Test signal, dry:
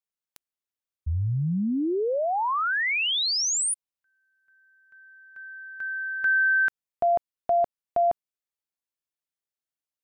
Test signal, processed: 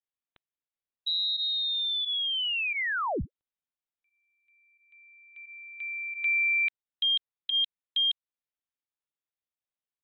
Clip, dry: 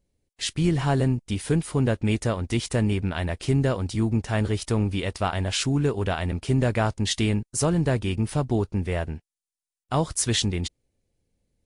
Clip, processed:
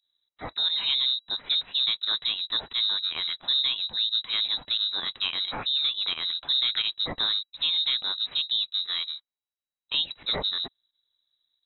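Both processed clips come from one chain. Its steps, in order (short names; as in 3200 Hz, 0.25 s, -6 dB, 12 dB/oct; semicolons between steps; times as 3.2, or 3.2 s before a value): pump 88 bpm, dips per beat 1, -14 dB, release 62 ms; inverted band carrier 3900 Hz; gain -4 dB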